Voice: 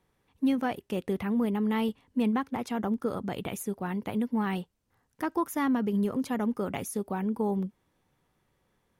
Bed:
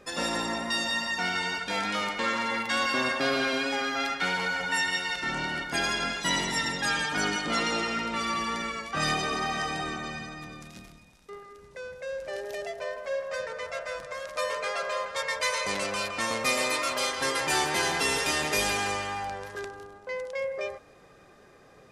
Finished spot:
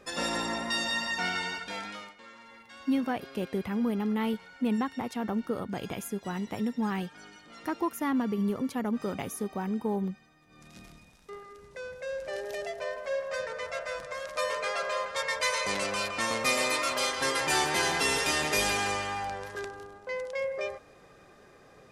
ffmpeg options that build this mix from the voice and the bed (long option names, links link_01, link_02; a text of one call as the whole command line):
ffmpeg -i stem1.wav -i stem2.wav -filter_complex "[0:a]adelay=2450,volume=-1.5dB[link_01];[1:a]volume=20.5dB,afade=type=out:start_time=1.26:duration=0.9:silence=0.0891251,afade=type=in:start_time=10.47:duration=0.47:silence=0.0794328[link_02];[link_01][link_02]amix=inputs=2:normalize=0" out.wav